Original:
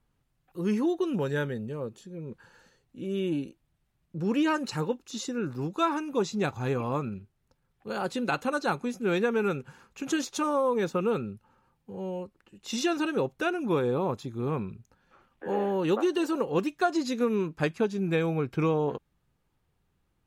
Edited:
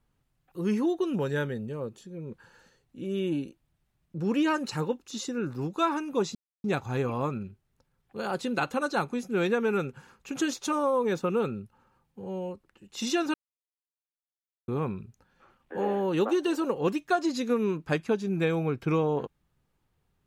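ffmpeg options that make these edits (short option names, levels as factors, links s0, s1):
-filter_complex "[0:a]asplit=4[s0][s1][s2][s3];[s0]atrim=end=6.35,asetpts=PTS-STARTPTS,afade=t=out:st=6.346:d=0.004:c=hsin,apad=pad_dur=0.29[s4];[s1]atrim=start=6.35:end=13.05,asetpts=PTS-STARTPTS,afade=t=in:d=0.004:c=hsin,afade=t=out:st=6.696:d=0.004:c=hsin[s5];[s2]atrim=start=13.05:end=14.39,asetpts=PTS-STARTPTS,volume=0[s6];[s3]atrim=start=14.39,asetpts=PTS-STARTPTS,afade=t=in:d=0.004:c=hsin[s7];[s4][s5][s6][s7]concat=n=4:v=0:a=1"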